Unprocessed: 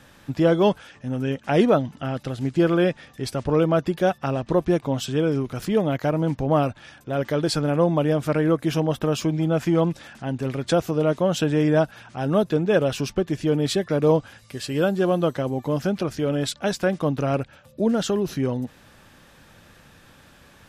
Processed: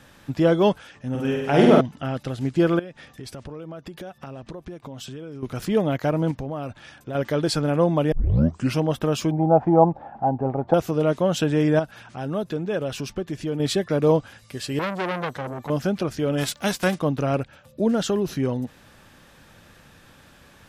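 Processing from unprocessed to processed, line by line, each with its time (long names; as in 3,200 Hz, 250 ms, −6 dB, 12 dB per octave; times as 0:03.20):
0:01.10–0:01.81: flutter between parallel walls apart 8.4 metres, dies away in 1.2 s
0:02.79–0:05.43: downward compressor 10 to 1, threshold −33 dBFS
0:06.31–0:07.15: downward compressor 5 to 1, threshold −27 dBFS
0:08.12: tape start 0.67 s
0:09.31–0:10.74: low-pass with resonance 800 Hz, resonance Q 8
0:11.79–0:13.60: downward compressor 1.5 to 1, threshold −33 dBFS
0:14.79–0:15.70: saturating transformer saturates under 2,000 Hz
0:16.37–0:16.94: spectral envelope flattened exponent 0.6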